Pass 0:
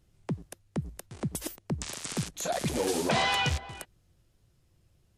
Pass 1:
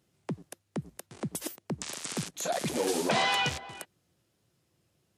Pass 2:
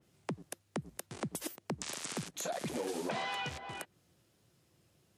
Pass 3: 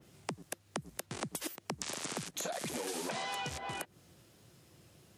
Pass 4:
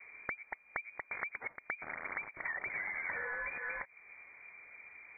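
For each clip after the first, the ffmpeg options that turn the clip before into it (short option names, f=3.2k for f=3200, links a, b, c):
-af "highpass=170"
-af "acompressor=threshold=-39dB:ratio=4,adynamicequalizer=threshold=0.002:dfrequency=2900:dqfactor=0.7:tfrequency=2900:tqfactor=0.7:attack=5:release=100:ratio=0.375:range=2.5:mode=cutabove:tftype=highshelf,volume=3dB"
-filter_complex "[0:a]acrossover=split=990|5300[a][b][c];[a]acompressor=threshold=-50dB:ratio=4[d];[b]acompressor=threshold=-53dB:ratio=4[e];[c]acompressor=threshold=-51dB:ratio=4[f];[d][e][f]amix=inputs=3:normalize=0,volume=9dB"
-af "lowpass=f=2.1k:t=q:w=0.5098,lowpass=f=2.1k:t=q:w=0.6013,lowpass=f=2.1k:t=q:w=0.9,lowpass=f=2.1k:t=q:w=2.563,afreqshift=-2500,acompressor=threshold=-59dB:ratio=1.5,volume=8.5dB"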